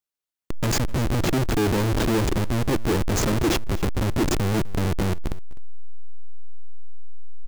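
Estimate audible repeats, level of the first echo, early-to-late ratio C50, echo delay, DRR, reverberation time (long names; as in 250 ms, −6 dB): 1, −20.0 dB, no reverb audible, 254 ms, no reverb audible, no reverb audible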